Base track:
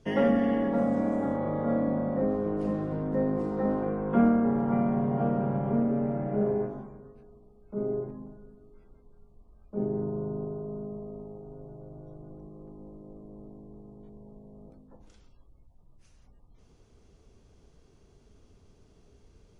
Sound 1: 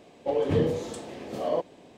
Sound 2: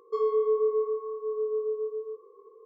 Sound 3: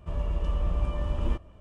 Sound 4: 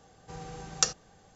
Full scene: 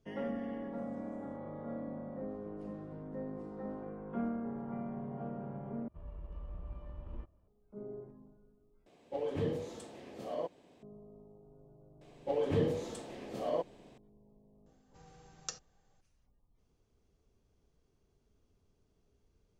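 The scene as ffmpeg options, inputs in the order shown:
ffmpeg -i bed.wav -i cue0.wav -i cue1.wav -i cue2.wav -i cue3.wav -filter_complex "[1:a]asplit=2[link_01][link_02];[0:a]volume=-14.5dB[link_03];[3:a]adynamicsmooth=sensitivity=3:basefreq=1600[link_04];[link_03]asplit=3[link_05][link_06][link_07];[link_05]atrim=end=5.884[link_08];[link_04]atrim=end=1.6,asetpts=PTS-STARTPTS,volume=-17.5dB[link_09];[link_06]atrim=start=7.476:end=8.864[link_10];[link_01]atrim=end=1.97,asetpts=PTS-STARTPTS,volume=-10.5dB[link_11];[link_07]atrim=start=10.826[link_12];[link_02]atrim=end=1.97,asetpts=PTS-STARTPTS,volume=-6.5dB,afade=type=in:duration=0.004:curve=hsin,afade=type=out:start_time=1.966:duration=0.004:curve=hsin,adelay=12010[link_13];[4:a]atrim=end=1.35,asetpts=PTS-STARTPTS,volume=-16dB,afade=type=in:duration=0.004:curve=hsin,afade=type=out:start_time=1.346:duration=0.004:curve=hsin,adelay=14660[link_14];[link_08][link_09]acrossfade=duration=0.004:curve1=hsin:curve2=hsin[link_15];[link_15][link_10]acrossfade=duration=0.004:curve1=hsin:curve2=hsin[link_16];[link_16][link_11]acrossfade=duration=0.004:curve1=hsin:curve2=hsin[link_17];[link_17][link_12]acrossfade=duration=0.004:curve1=hsin:curve2=hsin[link_18];[link_18][link_13][link_14]amix=inputs=3:normalize=0" out.wav

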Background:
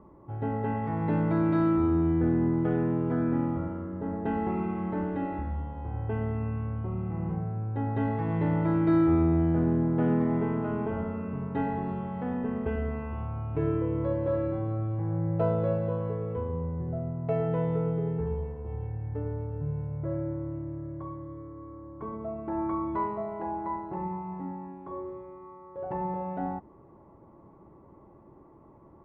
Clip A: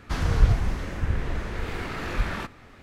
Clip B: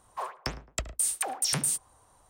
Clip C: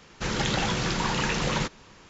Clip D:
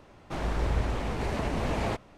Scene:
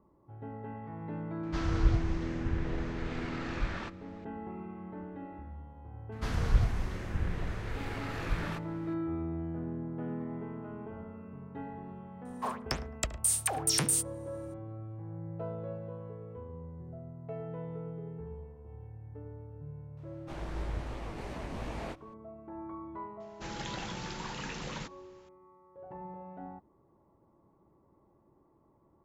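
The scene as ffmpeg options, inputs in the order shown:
ffmpeg -i bed.wav -i cue0.wav -i cue1.wav -i cue2.wav -i cue3.wav -filter_complex "[1:a]asplit=2[link_01][link_02];[0:a]volume=-12.5dB[link_03];[link_01]lowpass=frequency=7100:width=0.5412,lowpass=frequency=7100:width=1.3066[link_04];[4:a]flanger=delay=16:depth=7.9:speed=2.9[link_05];[link_04]atrim=end=2.82,asetpts=PTS-STARTPTS,volume=-7.5dB,afade=type=in:duration=0.004:curve=hsin,afade=type=out:start_time=2.816:duration=0.004:curve=hsin,adelay=1430[link_06];[link_02]atrim=end=2.82,asetpts=PTS-STARTPTS,volume=-7dB,afade=type=in:duration=0.004:curve=hsin,afade=type=out:start_time=2.816:duration=0.004:curve=hsin,adelay=6120[link_07];[2:a]atrim=end=2.29,asetpts=PTS-STARTPTS,volume=-0.5dB,afade=type=in:duration=0.004:curve=hsin,afade=type=out:start_time=2.286:duration=0.004:curve=hsin,adelay=12250[link_08];[link_05]atrim=end=2.17,asetpts=PTS-STARTPTS,volume=-7dB,afade=type=in:duration=0.004:curve=hsin,afade=type=out:start_time=2.166:duration=0.004:curve=hsin,adelay=19970[link_09];[3:a]atrim=end=2.09,asetpts=PTS-STARTPTS,volume=-13.5dB,afade=type=in:duration=0.004:curve=hsin,afade=type=out:start_time=2.086:duration=0.004:curve=hsin,adelay=23200[link_10];[link_03][link_06][link_07][link_08][link_09][link_10]amix=inputs=6:normalize=0" out.wav

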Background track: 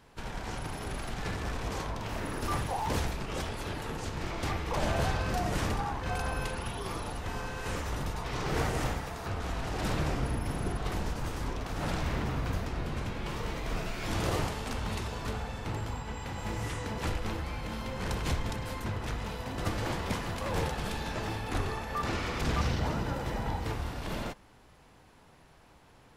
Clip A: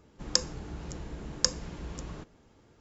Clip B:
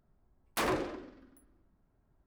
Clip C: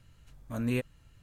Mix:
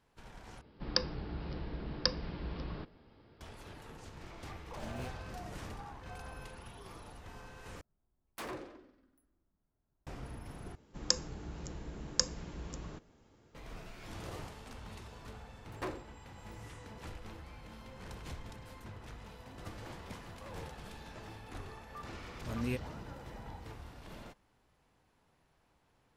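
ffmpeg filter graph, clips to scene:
ffmpeg -i bed.wav -i cue0.wav -i cue1.wav -i cue2.wav -filter_complex "[1:a]asplit=2[link_01][link_02];[3:a]asplit=2[link_03][link_04];[2:a]asplit=2[link_05][link_06];[0:a]volume=-14dB[link_07];[link_01]aresample=11025,aresample=44100[link_08];[link_03]acrusher=bits=7:mix=0:aa=0.5[link_09];[link_06]aeval=exprs='val(0)*pow(10,-28*if(lt(mod(1.5*n/s,1),2*abs(1.5)/1000),1-mod(1.5*n/s,1)/(2*abs(1.5)/1000),(mod(1.5*n/s,1)-2*abs(1.5)/1000)/(1-2*abs(1.5)/1000))/20)':channel_layout=same[link_10];[link_07]asplit=4[link_11][link_12][link_13][link_14];[link_11]atrim=end=0.614[link_15];[link_08]atrim=end=2.8,asetpts=PTS-STARTPTS,volume=-0.5dB[link_16];[link_12]atrim=start=3.406:end=7.814[link_17];[link_05]atrim=end=2.26,asetpts=PTS-STARTPTS,volume=-11.5dB[link_18];[link_13]atrim=start=10.066:end=10.754[link_19];[link_02]atrim=end=2.8,asetpts=PTS-STARTPTS,volume=-4dB[link_20];[link_14]atrim=start=13.546[link_21];[link_09]atrim=end=1.22,asetpts=PTS-STARTPTS,volume=-17dB,afade=type=in:duration=0.004:curve=hsin,afade=type=out:start_time=1.216:duration=0.004:curve=hsin,adelay=4280[link_22];[link_10]atrim=end=2.26,asetpts=PTS-STARTPTS,volume=-6dB,afade=type=in:duration=0.004:curve=hsin,afade=type=out:start_time=2.256:duration=0.004:curve=hsin,adelay=15150[link_23];[link_04]atrim=end=1.22,asetpts=PTS-STARTPTS,volume=-6dB,afade=type=in:duration=0.004:curve=hsin,afade=type=out:start_time=1.216:duration=0.004:curve=hsin,adelay=968436S[link_24];[link_15][link_16]acrossfade=duration=0.004:curve1=hsin:curve2=hsin[link_25];[link_25][link_17]acrossfade=duration=0.004:curve1=hsin:curve2=hsin[link_26];[link_26][link_18]acrossfade=duration=0.004:curve1=hsin:curve2=hsin[link_27];[link_27][link_19]acrossfade=duration=0.004:curve1=hsin:curve2=hsin[link_28];[link_28][link_20]acrossfade=duration=0.004:curve1=hsin:curve2=hsin[link_29];[link_29][link_21]acrossfade=duration=0.004:curve1=hsin:curve2=hsin[link_30];[link_30][link_22][link_23][link_24]amix=inputs=4:normalize=0" out.wav

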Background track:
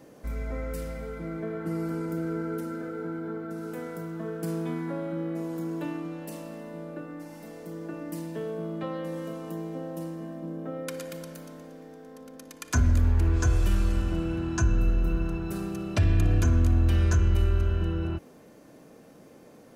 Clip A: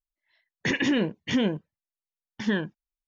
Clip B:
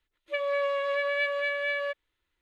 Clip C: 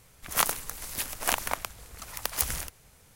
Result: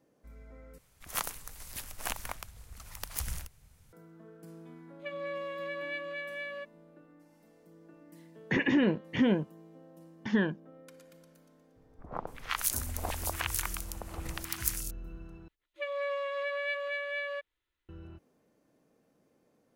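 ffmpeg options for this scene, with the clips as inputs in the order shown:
ffmpeg -i bed.wav -i cue0.wav -i cue1.wav -i cue2.wav -filter_complex "[3:a]asplit=2[link_01][link_02];[2:a]asplit=2[link_03][link_04];[0:a]volume=-18.5dB[link_05];[link_01]asubboost=boost=4:cutoff=200[link_06];[1:a]acrossover=split=2600[link_07][link_08];[link_08]acompressor=threshold=-50dB:ratio=4:attack=1:release=60[link_09];[link_07][link_09]amix=inputs=2:normalize=0[link_10];[link_02]acrossover=split=1000|4100[link_11][link_12][link_13];[link_12]adelay=360[link_14];[link_13]adelay=510[link_15];[link_11][link_14][link_15]amix=inputs=3:normalize=0[link_16];[link_05]asplit=3[link_17][link_18][link_19];[link_17]atrim=end=0.784[link_20];[link_06]atrim=end=3.15,asetpts=PTS-STARTPTS,volume=-9dB[link_21];[link_18]atrim=start=3.926:end=15.484[link_22];[link_04]atrim=end=2.41,asetpts=PTS-STARTPTS,volume=-6dB[link_23];[link_19]atrim=start=17.886[link_24];[link_03]atrim=end=2.41,asetpts=PTS-STARTPTS,volume=-10dB,afade=type=in:duration=0.004:curve=hsin,afade=type=out:start_time=2.406:duration=0.004:curve=hsin,adelay=4720[link_25];[link_10]atrim=end=3.07,asetpts=PTS-STARTPTS,volume=-1.5dB,afade=type=in:duration=0.004:curve=hsin,afade=type=out:start_time=3.066:duration=0.004:curve=hsin,adelay=346626S[link_26];[link_16]atrim=end=3.15,asetpts=PTS-STARTPTS,volume=-3dB,afade=type=in:duration=0.004:curve=hsin,afade=type=out:start_time=3.146:duration=0.004:curve=hsin,adelay=11760[link_27];[link_20][link_21]acrossfade=duration=0.004:curve1=hsin:curve2=hsin[link_28];[link_28][link_22]acrossfade=duration=0.004:curve1=hsin:curve2=hsin[link_29];[link_29][link_23]acrossfade=duration=0.004:curve1=hsin:curve2=hsin[link_30];[link_30][link_24]acrossfade=duration=0.004:curve1=hsin:curve2=hsin[link_31];[link_31][link_25][link_26][link_27]amix=inputs=4:normalize=0" out.wav

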